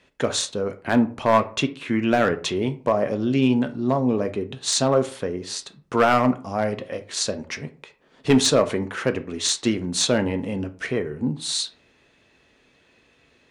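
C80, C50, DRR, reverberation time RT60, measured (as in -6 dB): 21.0 dB, 16.0 dB, 8.5 dB, 0.45 s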